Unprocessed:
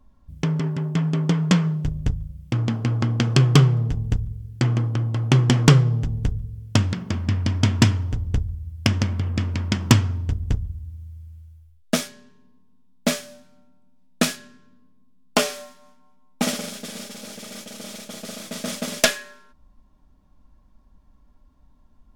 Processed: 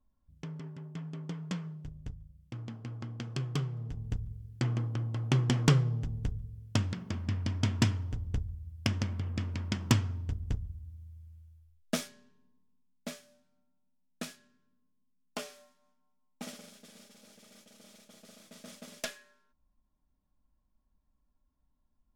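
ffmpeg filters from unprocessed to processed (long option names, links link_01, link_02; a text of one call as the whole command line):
ffmpeg -i in.wav -af "volume=-10.5dB,afade=type=in:start_time=3.7:duration=0.62:silence=0.375837,afade=type=out:start_time=11.98:duration=1.13:silence=0.334965" out.wav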